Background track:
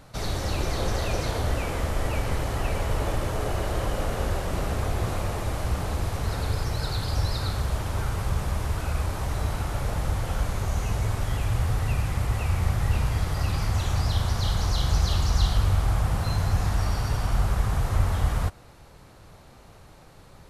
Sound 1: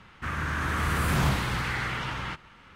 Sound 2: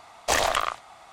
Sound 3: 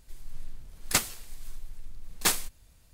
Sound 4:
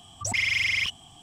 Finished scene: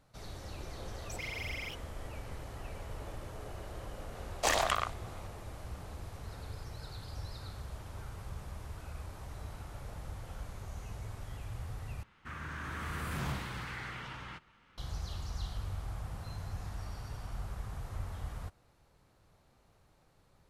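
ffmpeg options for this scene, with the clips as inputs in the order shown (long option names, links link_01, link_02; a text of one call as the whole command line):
ffmpeg -i bed.wav -i cue0.wav -i cue1.wav -i cue2.wav -i cue3.wav -filter_complex "[0:a]volume=-17dB[link_01];[4:a]aexciter=amount=5.8:drive=2.5:freq=11000[link_02];[link_01]asplit=2[link_03][link_04];[link_03]atrim=end=12.034[link_05];[1:a]atrim=end=2.75,asetpts=PTS-STARTPTS,volume=-12dB[link_06];[link_04]atrim=start=14.776[link_07];[link_02]atrim=end=1.22,asetpts=PTS-STARTPTS,volume=-17dB,afade=type=in:duration=0.004:curve=hsin,afade=type=out:start_time=1.216:duration=0.004:curve=hsin,adelay=850[link_08];[2:a]atrim=end=1.12,asetpts=PTS-STARTPTS,volume=-6.5dB,afade=type=in:duration=0.004:curve=hsin,afade=type=out:start_time=1.116:duration=0.004:curve=hsin,adelay=4150[link_09];[link_05][link_06]acrossfade=duration=0.004:curve1=hsin:curve2=hsin[link_10];[link_10][link_07]acrossfade=duration=0.004:curve1=hsin:curve2=hsin[link_11];[link_11][link_08][link_09]amix=inputs=3:normalize=0" out.wav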